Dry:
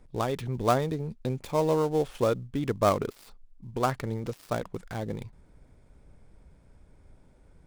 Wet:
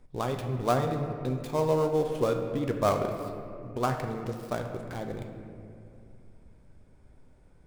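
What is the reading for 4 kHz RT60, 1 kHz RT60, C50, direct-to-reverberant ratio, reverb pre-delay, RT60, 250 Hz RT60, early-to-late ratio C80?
1.4 s, 2.2 s, 6.0 dB, 4.0 dB, 3 ms, 2.5 s, 3.4 s, 7.0 dB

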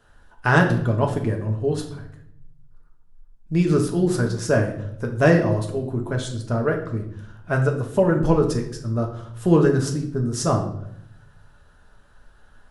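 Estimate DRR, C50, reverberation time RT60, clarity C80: 1.5 dB, 9.0 dB, 0.75 s, 12.0 dB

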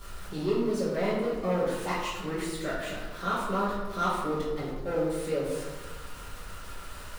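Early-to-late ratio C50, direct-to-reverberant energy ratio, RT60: 0.5 dB, −10.5 dB, 1.3 s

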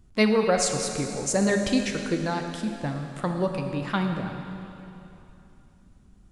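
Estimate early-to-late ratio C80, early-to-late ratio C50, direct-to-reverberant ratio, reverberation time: 5.5 dB, 4.5 dB, 3.5 dB, 3.0 s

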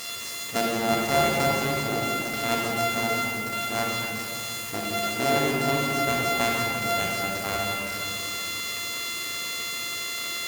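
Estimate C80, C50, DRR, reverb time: 0.0 dB, −2.0 dB, −2.5 dB, 2.6 s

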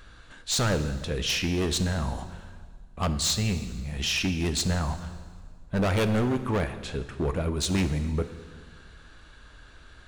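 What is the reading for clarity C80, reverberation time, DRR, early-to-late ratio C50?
13.0 dB, 1.8 s, 9.5 dB, 11.5 dB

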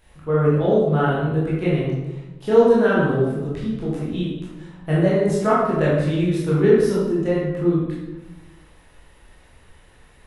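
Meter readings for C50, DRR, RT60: −0.5 dB, −8.0 dB, 1.1 s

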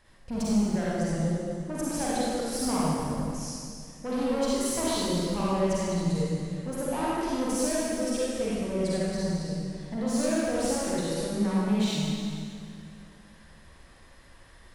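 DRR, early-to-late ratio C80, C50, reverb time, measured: −8.0 dB, −3.0 dB, −6.0 dB, 2.2 s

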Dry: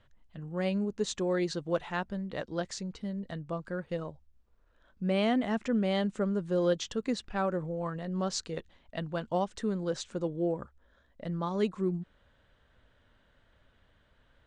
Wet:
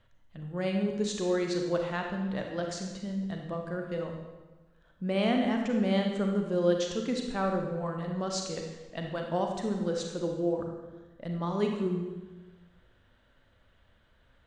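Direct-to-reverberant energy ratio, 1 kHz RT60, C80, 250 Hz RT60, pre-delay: 2.0 dB, 1.2 s, 5.5 dB, 1.3 s, 33 ms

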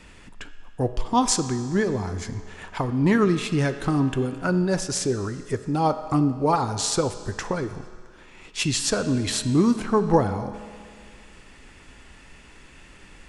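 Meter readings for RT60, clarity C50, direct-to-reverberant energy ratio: 2.0 s, 11.0 dB, 9.5 dB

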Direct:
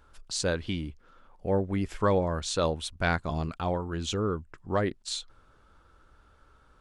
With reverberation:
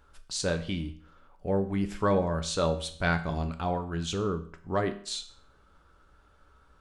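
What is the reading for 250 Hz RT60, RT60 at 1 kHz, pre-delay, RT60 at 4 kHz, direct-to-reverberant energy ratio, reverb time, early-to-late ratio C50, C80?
0.50 s, 0.50 s, 5 ms, 0.50 s, 7.0 dB, 0.55 s, 13.5 dB, 16.5 dB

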